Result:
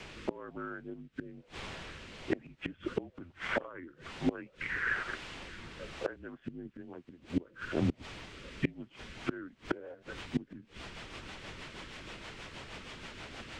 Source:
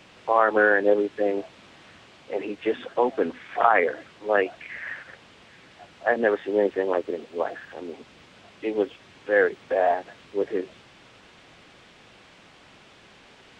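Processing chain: rotary speaker horn 1.1 Hz, later 6.3 Hz, at 8.84; flipped gate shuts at -25 dBFS, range -30 dB; frequency shift -160 Hz; gain +8 dB

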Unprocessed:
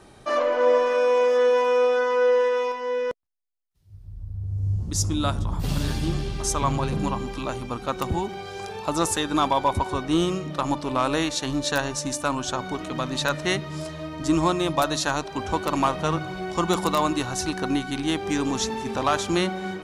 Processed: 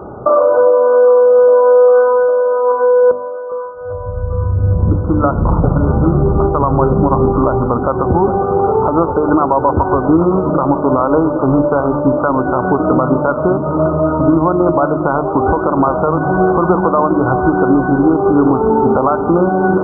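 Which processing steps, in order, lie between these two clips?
HPF 52 Hz 12 dB/oct; bell 490 Hz +4.5 dB 0.77 oct; notches 50/100/150/200/250/300/350 Hz; compressor 20:1, threshold -27 dBFS, peak gain reduction 16.5 dB; brick-wall FIR low-pass 1500 Hz; echo with dull and thin repeats by turns 0.404 s, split 880 Hz, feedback 84%, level -12 dB; maximiser +21 dB; gain -1 dB

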